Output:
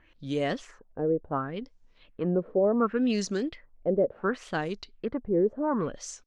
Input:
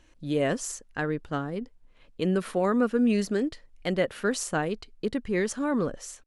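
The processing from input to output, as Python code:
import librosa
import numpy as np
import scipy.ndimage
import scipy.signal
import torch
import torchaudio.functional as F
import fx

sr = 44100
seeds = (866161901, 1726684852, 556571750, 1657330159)

y = fx.wow_flutter(x, sr, seeds[0], rate_hz=2.1, depth_cents=92.0)
y = fx.filter_lfo_lowpass(y, sr, shape='sine', hz=0.69, low_hz=460.0, high_hz=6300.0, q=3.0)
y = F.gain(torch.from_numpy(y), -3.0).numpy()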